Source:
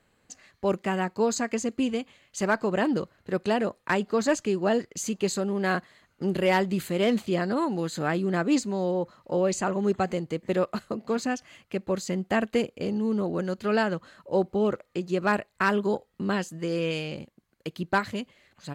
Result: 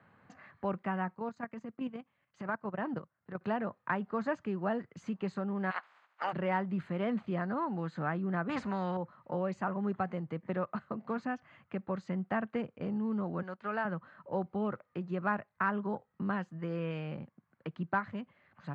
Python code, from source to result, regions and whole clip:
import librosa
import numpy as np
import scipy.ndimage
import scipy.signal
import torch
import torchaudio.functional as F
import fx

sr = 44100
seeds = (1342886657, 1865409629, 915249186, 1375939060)

y = fx.chain(x, sr, fx.transient(attack_db=-6, sustain_db=-11),
    fx.level_steps(step_db=9), at=(1.15, 3.41))
y = fx.spec_clip(y, sr, under_db=27, at=(5.7, 6.32), fade=0.02)
y = fx.highpass(y, sr, hz=720.0, slope=12, at=(5.7, 6.32), fade=0.02)
y = fx.over_compress(y, sr, threshold_db=-30.0, ratio=-0.5, at=(5.7, 6.32), fade=0.02)
y = fx.chain(y, sr, fx.low_shelf(hz=360.0, db=5.5),
    fx.spectral_comp(ratio=2.0), at=(8.49, 8.97))
y = fx.chain(y, sr, fx.law_mismatch(coded='A'),
    fx.highpass(hz=500.0, slope=6), at=(13.42, 13.85))
y = scipy.signal.sosfilt(scipy.signal.cheby1(2, 1.0, [130.0, 1300.0], 'bandpass', fs=sr, output='sos'), y)
y = fx.peak_eq(y, sr, hz=390.0, db=-10.5, octaves=1.7)
y = fx.band_squash(y, sr, depth_pct=40)
y = y * librosa.db_to_amplitude(-1.5)